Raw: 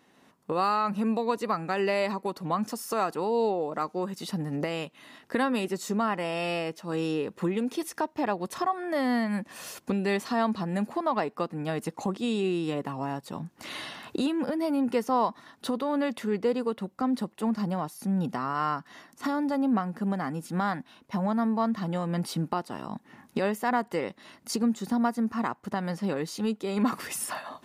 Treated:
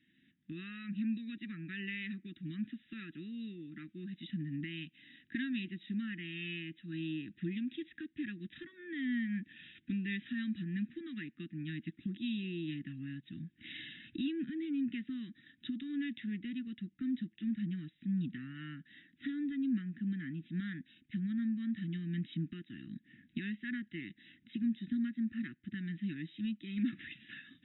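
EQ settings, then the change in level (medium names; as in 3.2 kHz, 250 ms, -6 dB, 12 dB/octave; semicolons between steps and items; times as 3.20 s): Chebyshev band-stop 340–1700 Hz, order 4; brick-wall FIR low-pass 3.9 kHz; high-order bell 530 Hz -10 dB 1.2 oct; -6.5 dB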